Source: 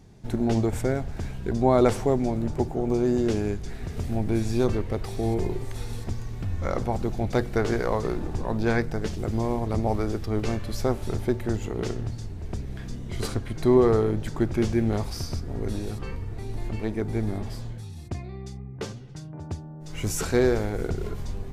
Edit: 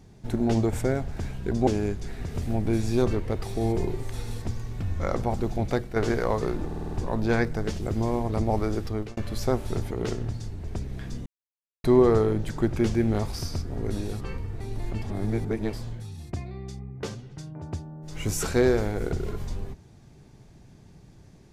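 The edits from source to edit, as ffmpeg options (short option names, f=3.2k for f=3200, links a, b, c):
-filter_complex "[0:a]asplit=14[a][b][c][d][e][f][g][h][i][j][k][l][m][n];[a]atrim=end=1.672[o];[b]atrim=start=3.288:end=7.58,asetpts=PTS-STARTPTS,afade=t=out:st=3.972:d=0.32:silence=0.354813[p];[c]atrim=start=7.58:end=8.332,asetpts=PTS-STARTPTS,afade=t=in:d=0.004:c=hsin:silence=0.354813[q];[d]atrim=start=8.278:end=8.332[r];[e]atrim=start=8.278:end=8.332[s];[f]atrim=start=8.278:end=8.332[t];[g]atrim=start=8.278:end=8.332[u];[h]atrim=start=8.278:end=10.54,asetpts=PTS-STARTPTS,afade=t=out:st=1.972:d=0.29[v];[i]atrim=start=10.54:end=11.282,asetpts=PTS-STARTPTS,afade=t=in:d=0.004:c=hsin[w];[j]atrim=start=11.688:end=13.04,asetpts=PTS-STARTPTS,afade=t=out:st=1.348:d=0.004:c=hsin[x];[k]atrim=start=13.04:end=13.62,asetpts=PTS-STARTPTS,volume=0[y];[l]atrim=start=13.62:end=16.802,asetpts=PTS-STARTPTS,afade=t=in:d=0.004:c=hsin[z];[m]atrim=start=16.798:end=17.512,asetpts=PTS-STARTPTS,areverse[aa];[n]atrim=start=17.508[ab];[p][q]concat=n=2:v=0:a=1[ac];[o][ac]acrossfade=d=0.004:c1=hsin:c2=hsin[ad];[ad][r]acrossfade=d=0.004:c1=hsin:c2=hsin[ae];[ae][s]acrossfade=d=0.004:c1=hsin:c2=hsin[af];[af][t]acrossfade=d=0.004:c1=hsin:c2=hsin[ag];[ag][u]acrossfade=d=0.004:c1=hsin:c2=hsin[ah];[v][w]concat=n=2:v=0:a=1[ai];[ah][ai]acrossfade=d=0.004:c1=hsin:c2=hsin[aj];[x][y][z]concat=n=3:v=0:a=1[ak];[aj][ak]acrossfade=d=0.004:c1=hsin:c2=hsin[al];[al][aa]acrossfade=d=0.004:c1=hsin:c2=hsin[am];[am][ab]acrossfade=d=0.004:c1=hsin:c2=hsin"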